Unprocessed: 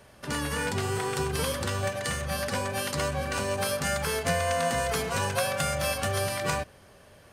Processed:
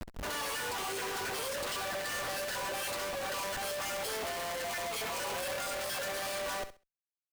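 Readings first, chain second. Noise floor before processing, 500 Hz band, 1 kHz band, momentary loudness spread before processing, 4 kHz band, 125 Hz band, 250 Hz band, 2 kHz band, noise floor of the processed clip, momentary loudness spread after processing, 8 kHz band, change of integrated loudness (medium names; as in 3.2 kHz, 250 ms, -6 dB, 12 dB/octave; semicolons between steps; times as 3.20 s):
-54 dBFS, -8.0 dB, -6.0 dB, 4 LU, -3.5 dB, -20.0 dB, -13.0 dB, -5.5 dB, under -85 dBFS, 1 LU, -5.5 dB, -6.5 dB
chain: random holes in the spectrogram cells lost 21%; in parallel at -4 dB: hard clipper -29 dBFS, distortion -9 dB; on the sum: high-pass 470 Hz 24 dB/octave; gain riding within 5 dB 2 s; Schmitt trigger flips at -40.5 dBFS; peak limiter -32.5 dBFS, peak gain reduction 9.5 dB; on a send: feedback delay 66 ms, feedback 20%, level -12 dB; on the sum: trim -3.5 dB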